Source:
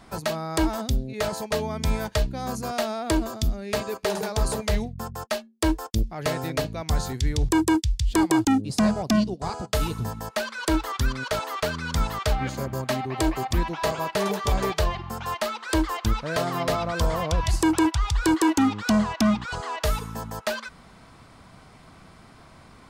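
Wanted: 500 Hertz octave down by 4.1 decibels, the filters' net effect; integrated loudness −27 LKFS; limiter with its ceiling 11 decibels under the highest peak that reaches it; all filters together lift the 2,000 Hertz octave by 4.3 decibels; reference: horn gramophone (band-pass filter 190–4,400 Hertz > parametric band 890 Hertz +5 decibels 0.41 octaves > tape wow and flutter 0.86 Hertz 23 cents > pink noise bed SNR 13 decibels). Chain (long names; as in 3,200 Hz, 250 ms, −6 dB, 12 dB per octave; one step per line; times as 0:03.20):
parametric band 500 Hz −7 dB
parametric band 2,000 Hz +6 dB
brickwall limiter −22 dBFS
band-pass filter 190–4,400 Hz
parametric band 890 Hz +5 dB 0.41 octaves
tape wow and flutter 0.86 Hz 23 cents
pink noise bed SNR 13 dB
level +5 dB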